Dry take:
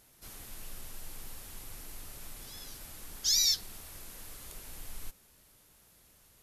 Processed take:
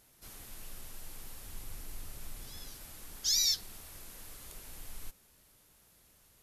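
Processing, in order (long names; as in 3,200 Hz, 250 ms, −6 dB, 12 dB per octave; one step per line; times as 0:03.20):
0:01.42–0:02.69: low-shelf EQ 160 Hz +6 dB
level −2 dB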